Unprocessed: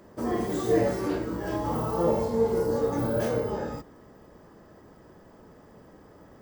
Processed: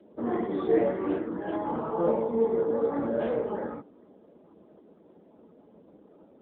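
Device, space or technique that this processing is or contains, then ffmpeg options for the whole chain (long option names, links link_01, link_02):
mobile call with aggressive noise cancelling: -af "highpass=frequency=180:width=0.5412,highpass=frequency=180:width=1.3066,afftdn=noise_reduction=15:noise_floor=-50" -ar 8000 -c:a libopencore_amrnb -b:a 7950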